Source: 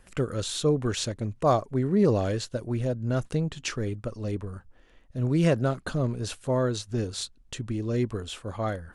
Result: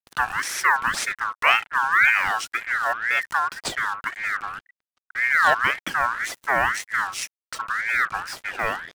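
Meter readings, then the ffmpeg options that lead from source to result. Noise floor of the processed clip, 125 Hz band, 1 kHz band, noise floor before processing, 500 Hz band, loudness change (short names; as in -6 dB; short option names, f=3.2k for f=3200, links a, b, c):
under -85 dBFS, -20.5 dB, +12.5 dB, -57 dBFS, -7.5 dB, +6.0 dB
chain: -af "acrusher=bits=6:mix=0:aa=0.5,aeval=exprs='val(0)*sin(2*PI*1600*n/s+1600*0.25/1.9*sin(2*PI*1.9*n/s))':c=same,volume=6.5dB"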